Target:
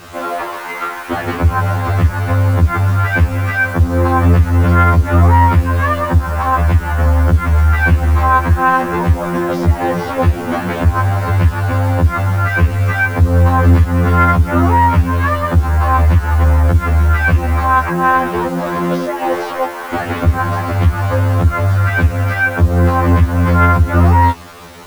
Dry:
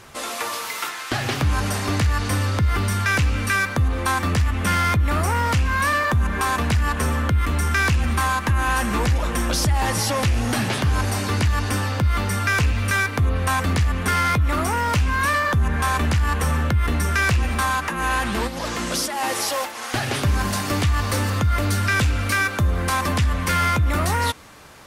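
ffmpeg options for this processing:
ffmpeg -i in.wav -filter_complex "[0:a]aeval=exprs='0.299*(cos(1*acos(clip(val(0)/0.299,-1,1)))-cos(1*PI/2))+0.00211*(cos(2*acos(clip(val(0)/0.299,-1,1)))-cos(2*PI/2))+0.00335*(cos(4*acos(clip(val(0)/0.299,-1,1)))-cos(4*PI/2))+0.0335*(cos(5*acos(clip(val(0)/0.299,-1,1)))-cos(5*PI/2))+0.00473*(cos(7*acos(clip(val(0)/0.299,-1,1)))-cos(7*PI/2))':channel_layout=same,asplit=2[link_01][link_02];[link_02]asoftclip=type=hard:threshold=-27dB,volume=-11dB[link_03];[link_01][link_03]amix=inputs=2:normalize=0,lowpass=1500,acrusher=bits=6:mix=0:aa=0.000001,afftfilt=real='re*2*eq(mod(b,4),0)':imag='im*2*eq(mod(b,4),0)':win_size=2048:overlap=0.75,volume=8dB" out.wav

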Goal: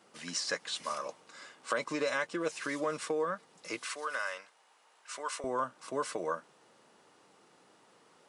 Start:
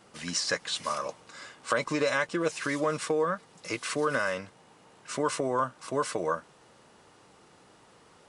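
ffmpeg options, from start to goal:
ffmpeg -i in.wav -af "asetnsamples=nb_out_samples=441:pad=0,asendcmd='3.85 highpass f 790;5.44 highpass f 190',highpass=200,volume=-5dB" out.wav

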